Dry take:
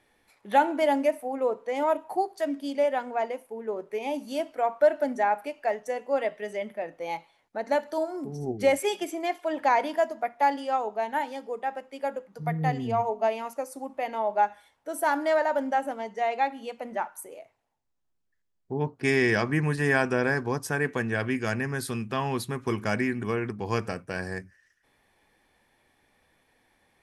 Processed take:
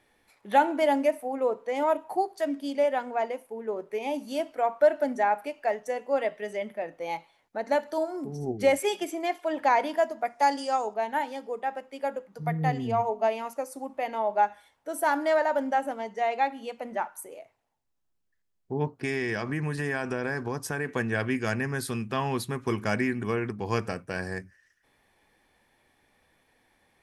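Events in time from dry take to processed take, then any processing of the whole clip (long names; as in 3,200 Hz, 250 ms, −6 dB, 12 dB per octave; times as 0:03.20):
0:10.25–0:10.94: flat-topped bell 6,700 Hz +11.5 dB 1.3 octaves
0:18.85–0:20.91: downward compressor 4 to 1, threshold −26 dBFS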